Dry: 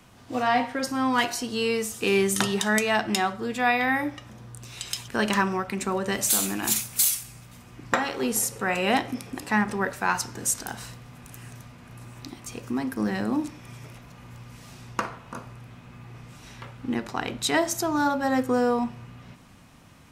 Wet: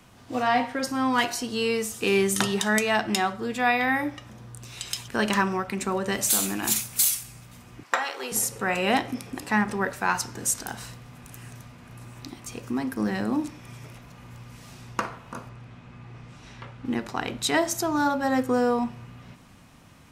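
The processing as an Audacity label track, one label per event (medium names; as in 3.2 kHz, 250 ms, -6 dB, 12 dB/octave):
7.830000	8.320000	high-pass 620 Hz
15.490000	16.850000	distance through air 64 m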